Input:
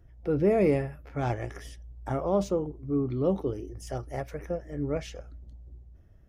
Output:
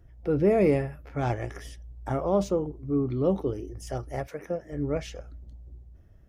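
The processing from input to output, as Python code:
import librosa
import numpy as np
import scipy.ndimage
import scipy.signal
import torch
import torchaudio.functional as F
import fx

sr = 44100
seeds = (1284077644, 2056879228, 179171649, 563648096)

y = fx.highpass(x, sr, hz=fx.line((4.26, 240.0), (4.71, 100.0)), slope=12, at=(4.26, 4.71), fade=0.02)
y = F.gain(torch.from_numpy(y), 1.5).numpy()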